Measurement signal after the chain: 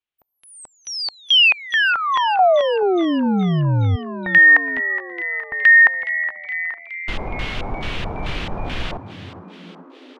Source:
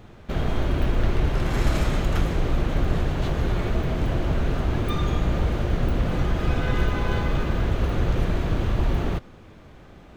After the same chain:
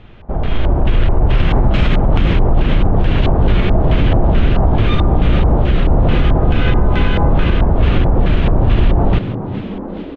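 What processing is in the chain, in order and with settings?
bass shelf 75 Hz +8.5 dB; peak limiter -14 dBFS; level rider gain up to 7.5 dB; LFO low-pass square 2.3 Hz 830–3000 Hz; frequency-shifting echo 418 ms, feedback 64%, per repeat +83 Hz, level -13.5 dB; trim +2 dB

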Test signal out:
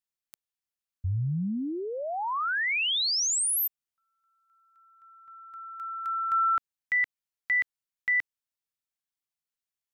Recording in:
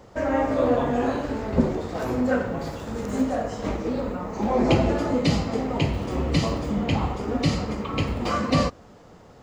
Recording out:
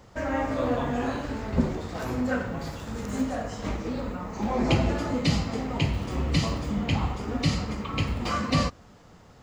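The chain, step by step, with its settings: peaking EQ 470 Hz -7 dB 2 oct

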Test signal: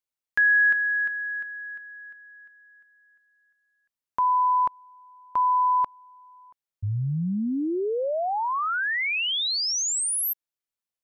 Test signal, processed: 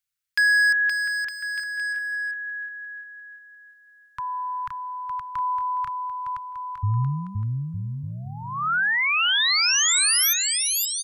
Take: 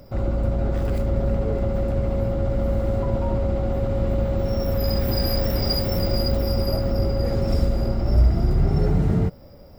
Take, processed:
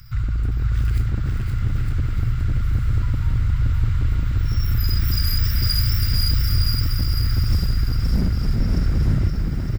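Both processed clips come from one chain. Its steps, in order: Chebyshev band-stop 130–1400 Hz, order 3; in parallel at +1 dB: compression 8:1, threshold -29 dBFS; on the sum: wavefolder -15 dBFS; bouncing-ball echo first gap 520 ms, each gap 0.75×, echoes 5

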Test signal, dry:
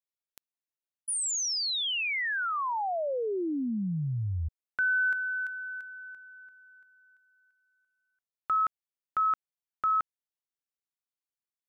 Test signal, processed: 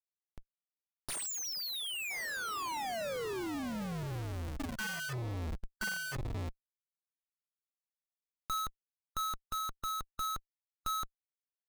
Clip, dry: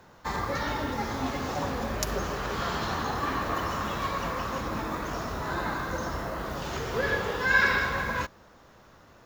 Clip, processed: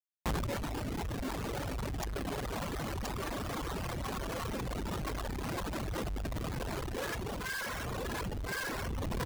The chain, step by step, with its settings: bass shelf 86 Hz +8 dB; feedback comb 330 Hz, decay 0.55 s, mix 30%; de-hum 74.49 Hz, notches 31; on a send: feedback delay 1025 ms, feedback 28%, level -3.5 dB; on the sum: Schmitt trigger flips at -32 dBFS; gain riding within 3 dB 0.5 s; reverb removal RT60 2 s

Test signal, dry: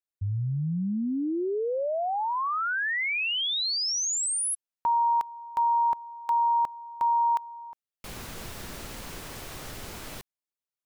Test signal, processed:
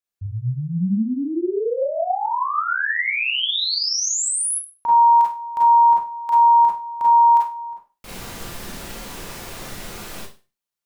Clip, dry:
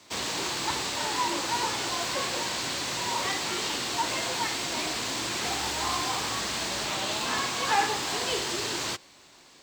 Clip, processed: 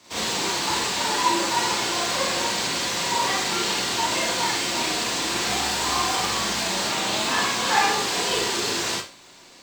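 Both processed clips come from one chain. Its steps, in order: Schroeder reverb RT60 0.32 s, combs from 32 ms, DRR -4.5 dB

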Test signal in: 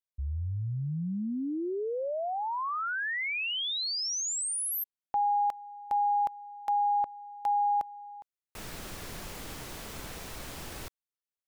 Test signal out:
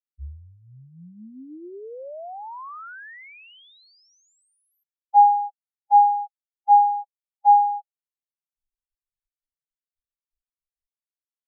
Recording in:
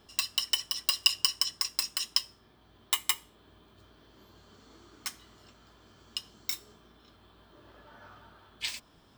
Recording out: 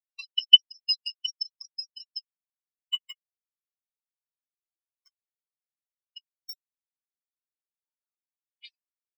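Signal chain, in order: reverb removal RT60 1.9 s; sine folder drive 13 dB, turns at -5 dBFS; spectral contrast expander 4:1; trim +1 dB

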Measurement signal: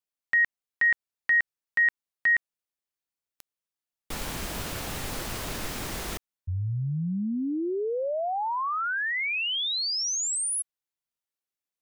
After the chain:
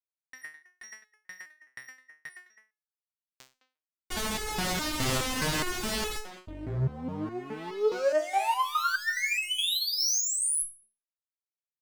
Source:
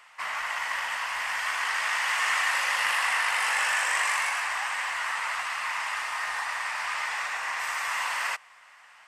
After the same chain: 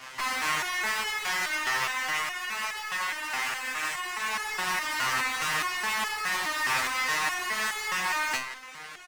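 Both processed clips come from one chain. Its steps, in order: octave divider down 1 oct, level -1 dB; low-pass 7.9 kHz 12 dB/octave; compressor with a negative ratio -32 dBFS, ratio -0.5; fuzz box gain 41 dB, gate -50 dBFS; speakerphone echo 210 ms, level -10 dB; resonator arpeggio 4.8 Hz 130–430 Hz; trim -2 dB

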